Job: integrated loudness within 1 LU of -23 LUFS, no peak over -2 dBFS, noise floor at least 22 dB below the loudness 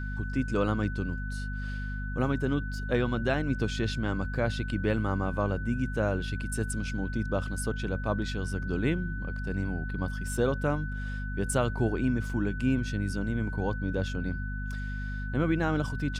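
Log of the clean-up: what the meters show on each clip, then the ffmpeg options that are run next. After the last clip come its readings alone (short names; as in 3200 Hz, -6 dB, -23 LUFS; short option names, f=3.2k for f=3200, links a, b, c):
hum 50 Hz; harmonics up to 250 Hz; hum level -32 dBFS; steady tone 1500 Hz; tone level -40 dBFS; loudness -31.0 LUFS; peak -14.0 dBFS; loudness target -23.0 LUFS
-> -af "bandreject=f=50:t=h:w=6,bandreject=f=100:t=h:w=6,bandreject=f=150:t=h:w=6,bandreject=f=200:t=h:w=6,bandreject=f=250:t=h:w=6"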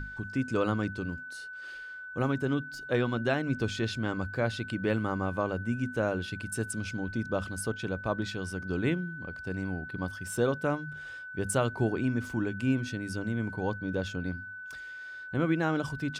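hum none; steady tone 1500 Hz; tone level -40 dBFS
-> -af "bandreject=f=1.5k:w=30"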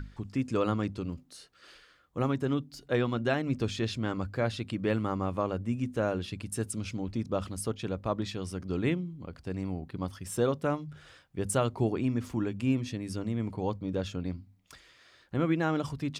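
steady tone none; loudness -32.0 LUFS; peak -15.0 dBFS; loudness target -23.0 LUFS
-> -af "volume=9dB"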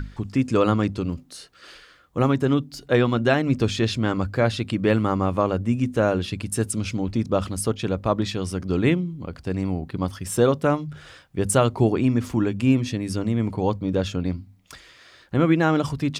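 loudness -23.0 LUFS; peak -6.0 dBFS; noise floor -52 dBFS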